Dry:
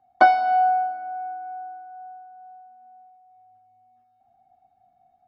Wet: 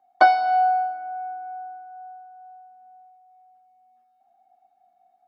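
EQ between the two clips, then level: high-pass 350 Hz 12 dB/octave; dynamic bell 4.5 kHz, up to +6 dB, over -53 dBFS, Q 2.9; 0.0 dB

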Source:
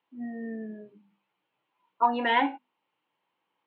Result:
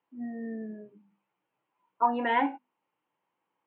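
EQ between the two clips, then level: low-pass 3.8 kHz; distance through air 370 m; 0.0 dB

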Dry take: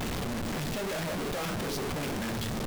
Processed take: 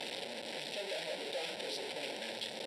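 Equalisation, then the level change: cabinet simulation 490–8400 Hz, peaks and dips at 540 Hz +8 dB, 890 Hz +7 dB, 3.8 kHz +4 dB, 5.8 kHz +8 dB; treble shelf 4.5 kHz +10 dB; static phaser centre 2.8 kHz, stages 4; -5.0 dB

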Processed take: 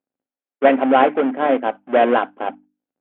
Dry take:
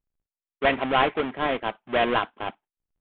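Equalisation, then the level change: cabinet simulation 230–3100 Hz, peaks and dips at 260 Hz +10 dB, 540 Hz +8 dB, 770 Hz +7 dB, 1.5 kHz +5 dB; peaking EQ 300 Hz +6.5 dB 2.4 oct; hum notches 50/100/150/200/250/300 Hz; -1.0 dB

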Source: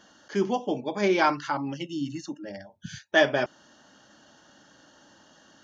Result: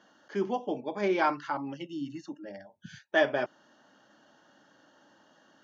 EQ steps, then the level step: high-pass 88 Hz; low-pass 2 kHz 6 dB/octave; bass shelf 160 Hz -9.5 dB; -2.5 dB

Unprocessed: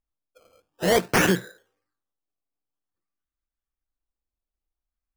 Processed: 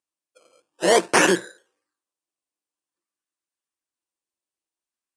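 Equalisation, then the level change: treble shelf 4 kHz +11.5 dB; dynamic bell 700 Hz, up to +5 dB, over -32 dBFS, Q 0.79; cabinet simulation 190–9100 Hz, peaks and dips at 340 Hz +8 dB, 560 Hz +4 dB, 1 kHz +7 dB, 1.7 kHz +4 dB, 2.7 kHz +4 dB, 9.1 kHz +6 dB; -3.5 dB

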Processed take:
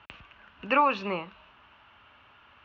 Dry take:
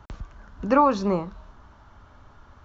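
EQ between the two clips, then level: high-pass 56 Hz; four-pole ladder low-pass 2.9 kHz, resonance 75%; tilt EQ +3 dB/octave; +7.5 dB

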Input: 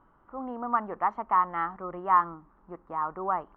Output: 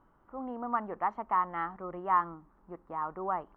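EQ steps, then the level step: peaking EQ 1.2 kHz -3.5 dB 0.88 oct; -2.0 dB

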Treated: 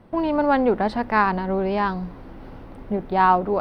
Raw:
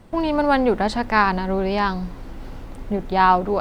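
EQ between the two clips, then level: bass shelf 74 Hz -9.5 dB; treble shelf 2.9 kHz -11.5 dB; peaking EQ 7.1 kHz -13 dB 0.34 oct; 0.0 dB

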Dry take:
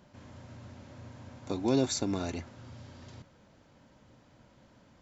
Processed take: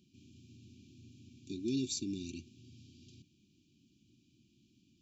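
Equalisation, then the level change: high-pass 160 Hz 6 dB/octave; brick-wall FIR band-stop 390–2300 Hz; band-stop 2.6 kHz, Q 25; -4.5 dB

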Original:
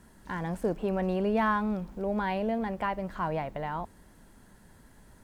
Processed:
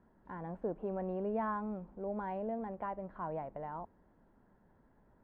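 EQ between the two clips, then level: low-pass 1 kHz 12 dB/octave; bass shelf 220 Hz -8.5 dB; -5.5 dB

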